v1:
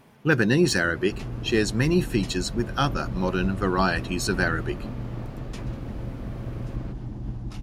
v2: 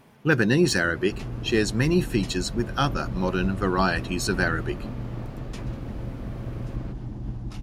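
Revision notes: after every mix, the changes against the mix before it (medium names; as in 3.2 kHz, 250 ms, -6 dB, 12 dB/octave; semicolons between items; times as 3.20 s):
no change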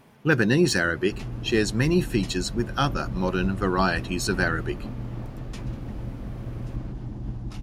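first sound -3.5 dB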